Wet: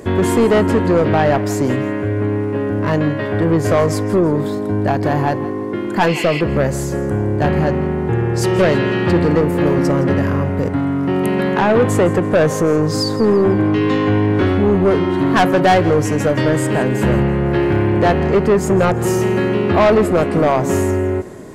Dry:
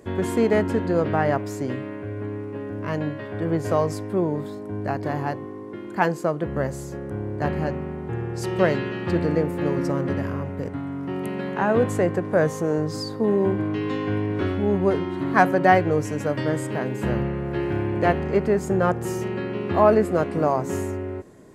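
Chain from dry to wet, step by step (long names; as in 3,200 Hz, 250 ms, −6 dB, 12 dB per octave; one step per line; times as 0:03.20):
healed spectral selection 0:06.09–0:06.38, 1,900–5,400 Hz before
in parallel at −1.5 dB: downward compressor, threshold −27 dBFS, peak gain reduction 15.5 dB
on the sum: soft clipping −16 dBFS, distortion −11 dB
feedback echo with a high-pass in the loop 165 ms, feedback 36%, level −16.5 dB
level +8.5 dB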